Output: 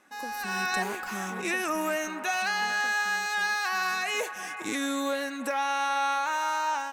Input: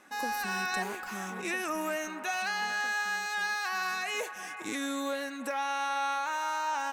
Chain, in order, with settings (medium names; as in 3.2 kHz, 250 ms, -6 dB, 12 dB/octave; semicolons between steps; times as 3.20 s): level rider gain up to 8 dB; trim -4 dB